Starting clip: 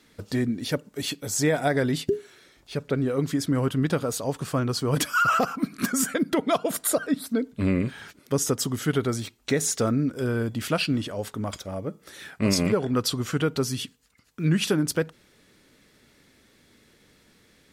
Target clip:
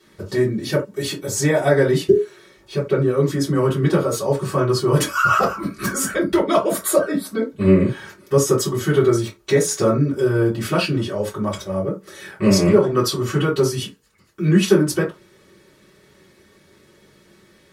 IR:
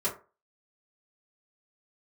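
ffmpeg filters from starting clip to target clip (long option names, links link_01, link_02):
-filter_complex "[0:a]asplit=3[link_01][link_02][link_03];[link_01]afade=type=out:start_time=5.07:duration=0.02[link_04];[link_02]asubboost=boost=9.5:cutoff=67,afade=type=in:start_time=5.07:duration=0.02,afade=type=out:start_time=6.39:duration=0.02[link_05];[link_03]afade=type=in:start_time=6.39:duration=0.02[link_06];[link_04][link_05][link_06]amix=inputs=3:normalize=0[link_07];[1:a]atrim=start_sample=2205,atrim=end_sample=3969,asetrate=41454,aresample=44100[link_08];[link_07][link_08]afir=irnorm=-1:irlink=0,volume=-1dB"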